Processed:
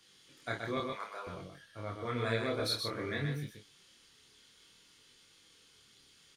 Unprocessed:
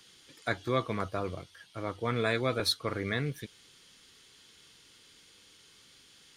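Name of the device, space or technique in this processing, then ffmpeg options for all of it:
double-tracked vocal: -filter_complex "[0:a]asettb=1/sr,asplit=3[link_01][link_02][link_03];[link_01]atrim=end=0.774[link_04];[link_02]atrim=start=0.77:end=1.27,asetpts=PTS-STARTPTS,afade=type=in:duration=0.004:curve=qsin,afade=type=out:start_time=0.496:duration=0.004:curve=qsin,highpass=750[link_05];[link_03]atrim=start=1.266[link_06];[link_04][link_05]acrossfade=duration=0.004:curve1=hsin:curve2=qsin[link_07];[link_07][link_06]acrossfade=duration=0.004:curve1=qsin:curve2=hsin,asplit=2[link_08][link_09];[link_09]adelay=28,volume=-6dB[link_10];[link_08][link_10]amix=inputs=2:normalize=0,aecho=1:1:125:0.562,flanger=delay=20:depth=7.8:speed=0.58,volume=-3.5dB"

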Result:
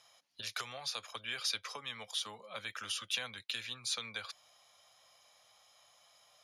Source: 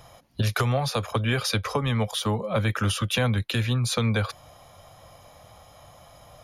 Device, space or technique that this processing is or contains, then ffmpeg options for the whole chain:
piezo pickup straight into a mixer: -af "lowpass=5300,aderivative"

